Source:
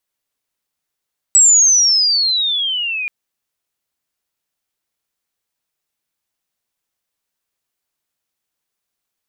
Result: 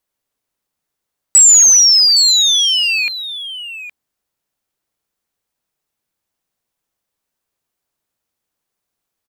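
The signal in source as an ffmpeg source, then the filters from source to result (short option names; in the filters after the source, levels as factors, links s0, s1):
-f lavfi -i "aevalsrc='pow(10,(-5.5-14*t/1.73)/20)*sin(2*PI*7900*1.73/log(2400/7900)*(exp(log(2400/7900)*t/1.73)-1))':d=1.73:s=44100"
-filter_complex "[0:a]asplit=2[s0][s1];[s1]adynamicsmooth=sensitivity=7.5:basefreq=1800,volume=0.794[s2];[s0][s2]amix=inputs=2:normalize=0,aecho=1:1:816:0.237"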